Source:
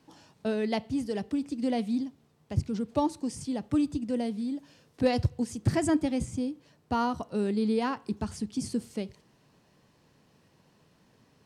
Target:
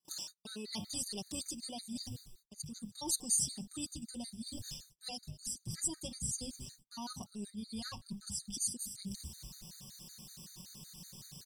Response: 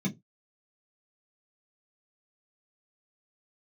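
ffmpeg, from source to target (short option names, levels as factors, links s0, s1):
-filter_complex "[0:a]highshelf=f=4600:g=6,bandreject=f=50:t=h:w=6,bandreject=f=100:t=h:w=6,bandreject=f=150:t=h:w=6,bandreject=f=200:t=h:w=6,bandreject=f=250:t=h:w=6,aecho=1:1:5.4:0.86,asplit=4[s0][s1][s2][s3];[s1]adelay=198,afreqshift=-120,volume=0.0631[s4];[s2]adelay=396,afreqshift=-240,volume=0.0327[s5];[s3]adelay=594,afreqshift=-360,volume=0.017[s6];[s0][s4][s5][s6]amix=inputs=4:normalize=0,asubboost=boost=5:cutoff=190,areverse,acompressor=threshold=0.01:ratio=12,areverse,agate=range=0.0178:threshold=0.00126:ratio=16:detection=peak,aexciter=amount=4.8:drive=8.3:freq=3300,afftfilt=real='re*gt(sin(2*PI*5.3*pts/sr)*(1-2*mod(floor(b*sr/1024/1200),2)),0)':imag='im*gt(sin(2*PI*5.3*pts/sr)*(1-2*mod(floor(b*sr/1024/1200),2)),0)':win_size=1024:overlap=0.75"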